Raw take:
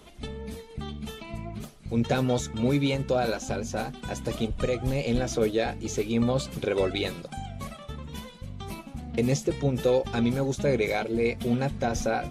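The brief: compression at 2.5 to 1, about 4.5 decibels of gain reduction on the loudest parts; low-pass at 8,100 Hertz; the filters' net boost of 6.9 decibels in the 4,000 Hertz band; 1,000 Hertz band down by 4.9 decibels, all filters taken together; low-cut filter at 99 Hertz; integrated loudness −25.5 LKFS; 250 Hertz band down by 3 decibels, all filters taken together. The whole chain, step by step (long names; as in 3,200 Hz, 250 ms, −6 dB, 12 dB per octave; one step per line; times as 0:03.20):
high-pass filter 99 Hz
low-pass filter 8,100 Hz
parametric band 250 Hz −3 dB
parametric band 1,000 Hz −8 dB
parametric band 4,000 Hz +8.5 dB
downward compressor 2.5 to 1, threshold −28 dBFS
level +7.5 dB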